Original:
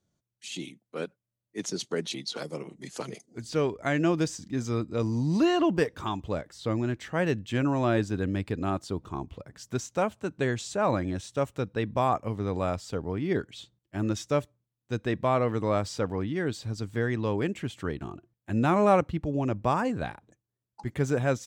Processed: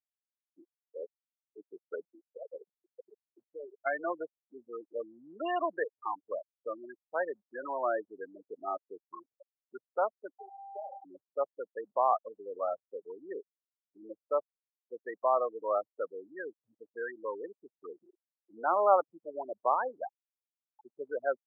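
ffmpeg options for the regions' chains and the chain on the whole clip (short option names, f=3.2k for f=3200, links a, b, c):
-filter_complex "[0:a]asettb=1/sr,asplit=3[a][b][c];[a]atrim=end=2.804[d];[b]atrim=start=2.8:end=3.85,asetpts=PTS-STARTPTS,afade=t=in:d=0.004:c=qsin,afade=t=out:st=1.046:d=0.004:c=qsin,bandreject=f=50:t=h:w=6,bandreject=f=100:t=h:w=6,bandreject=f=150:t=h:w=6,bandreject=f=200:t=h:w=6,bandreject=f=250:t=h:w=6,bandreject=f=300:t=h:w=6,acompressor=threshold=-33dB:ratio=3:attack=3.2:release=140:knee=1:detection=peak[e];[c]atrim=start=3.846[f];[d][e]acrossfade=d=0.004:c1=hsin:c2=qsin[g];[g][f]acrossfade=d=0.004:c1=qsin:c2=hsin,asettb=1/sr,asplit=3[h][i][j];[h]atrim=end=10.384[k];[i]atrim=start=10.38:end=11.05,asetpts=PTS-STARTPTS,afade=t=in:d=0.004:c=qsin,afade=t=out:st=0.666:d=0.004:c=qsin,highpass=480,acompressor=threshold=-33dB:ratio=10:attack=3.2:release=140:knee=1:detection=peak,aeval=exprs='val(0)+0.01*sin(2*PI*790*n/s)':c=same[l];[j]atrim=start=11.046[m];[k][l]acrossfade=d=0.004:c1=hsin:c2=qsin[n];[n][m]acrossfade=d=0.004:c1=qsin:c2=hsin,lowpass=2.2k,afftfilt=real='re*gte(hypot(re,im),0.0891)':imag='im*gte(hypot(re,im),0.0891)':win_size=1024:overlap=0.75,highpass=f=540:w=0.5412,highpass=f=540:w=1.3066"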